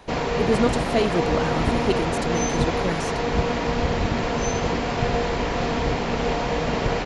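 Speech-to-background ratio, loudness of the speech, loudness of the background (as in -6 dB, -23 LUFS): -3.0 dB, -27.0 LUFS, -24.0 LUFS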